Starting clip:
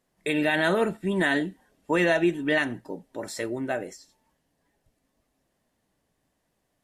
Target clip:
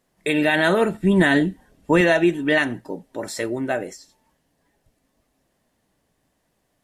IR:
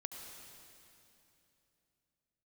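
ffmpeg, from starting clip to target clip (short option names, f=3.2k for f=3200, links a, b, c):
-filter_complex "[0:a]asettb=1/sr,asplit=3[a][b][c];[a]atrim=end=0.944[d];[b]atrim=start=0.94:end=2.01,asetpts=PTS-STARTPTS,afade=t=in:d=0.004:c=qsin,afade=t=out:st=1.066:d=0.004:c=qsin,lowshelf=f=190:g=11.5[e];[c]atrim=start=2.006[f];[d][e]acrossfade=d=0.004:c1=hsin:c2=qsin[g];[g][f]acrossfade=d=0.004:c1=qsin:c2=hsin,volume=5dB"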